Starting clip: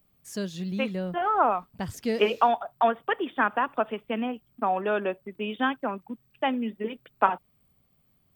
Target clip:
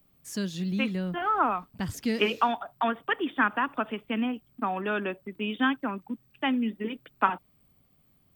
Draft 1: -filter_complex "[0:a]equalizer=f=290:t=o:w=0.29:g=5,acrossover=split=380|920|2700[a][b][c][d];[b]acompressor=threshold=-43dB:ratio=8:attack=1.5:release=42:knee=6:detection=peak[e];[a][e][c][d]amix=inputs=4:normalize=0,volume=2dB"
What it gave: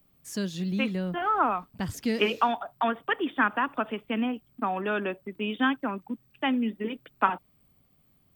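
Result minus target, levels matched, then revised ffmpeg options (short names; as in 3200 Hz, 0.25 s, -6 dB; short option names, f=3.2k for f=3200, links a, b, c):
compressor: peak gain reduction -7 dB
-filter_complex "[0:a]equalizer=f=290:t=o:w=0.29:g=5,acrossover=split=380|920|2700[a][b][c][d];[b]acompressor=threshold=-51dB:ratio=8:attack=1.5:release=42:knee=6:detection=peak[e];[a][e][c][d]amix=inputs=4:normalize=0,volume=2dB"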